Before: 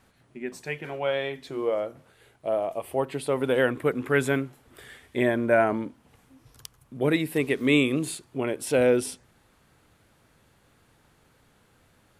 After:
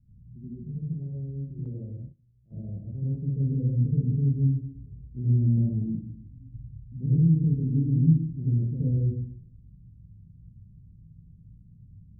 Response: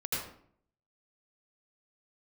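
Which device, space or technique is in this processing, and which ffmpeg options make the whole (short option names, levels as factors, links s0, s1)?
club heard from the street: -filter_complex "[0:a]alimiter=limit=0.224:level=0:latency=1:release=255,lowpass=f=160:w=0.5412,lowpass=f=160:w=1.3066[s0];[1:a]atrim=start_sample=2205[s1];[s0][s1]afir=irnorm=-1:irlink=0,asettb=1/sr,asplit=3[s2][s3][s4];[s2]atrim=end=1.654[s5];[s3]atrim=start=1.65:end=2.52,asetpts=PTS-STARTPTS,afade=t=in:d=0.004:c=qsin,afade=t=out:st=0.866:d=0.004:c=qsin,agate=range=0.158:threshold=0.00355:ratio=16:detection=peak[s6];[s4]atrim=start=2.516[s7];[s5][s6]acrossfade=d=0.004:c1=hsin:c2=qsin[s8];[s8][s7]acrossfade=d=0.004:c1=qsin:c2=hsin,volume=2.82"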